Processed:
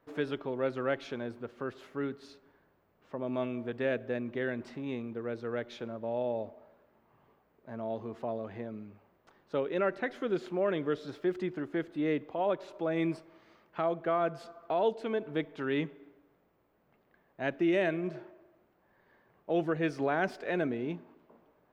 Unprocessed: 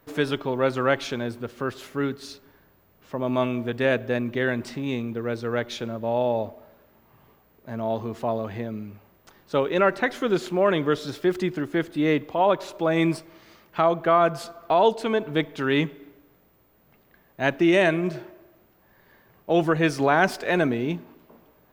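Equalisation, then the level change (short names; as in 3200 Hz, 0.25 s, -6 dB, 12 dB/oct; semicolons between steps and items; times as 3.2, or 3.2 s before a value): LPF 1500 Hz 6 dB/oct; low shelf 180 Hz -9.5 dB; dynamic EQ 990 Hz, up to -7 dB, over -38 dBFS, Q 1.5; -5.5 dB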